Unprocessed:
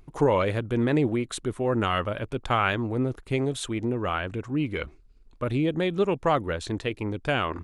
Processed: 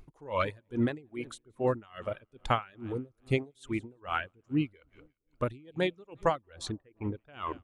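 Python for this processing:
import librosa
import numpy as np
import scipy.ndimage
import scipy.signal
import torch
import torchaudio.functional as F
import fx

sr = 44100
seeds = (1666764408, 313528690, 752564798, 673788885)

y = fx.echo_split(x, sr, split_hz=790.0, low_ms=232, high_ms=174, feedback_pct=52, wet_db=-15)
y = fx.dereverb_blind(y, sr, rt60_s=1.8)
y = fx.lowpass(y, sr, hz=fx.line((6.71, 1500.0), (7.32, 3600.0)), slope=24, at=(6.71, 7.32), fade=0.02)
y = y * 10.0 ** (-30 * (0.5 - 0.5 * np.cos(2.0 * np.pi * 2.4 * np.arange(len(y)) / sr)) / 20.0)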